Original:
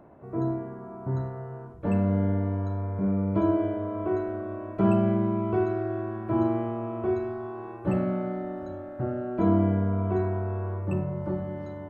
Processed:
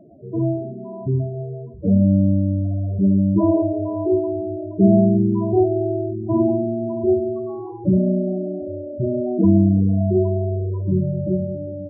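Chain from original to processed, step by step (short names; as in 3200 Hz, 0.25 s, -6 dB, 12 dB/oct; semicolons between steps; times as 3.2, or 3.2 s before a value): loudest bins only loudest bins 8; non-linear reverb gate 0.23 s falling, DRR 11 dB; gain +9 dB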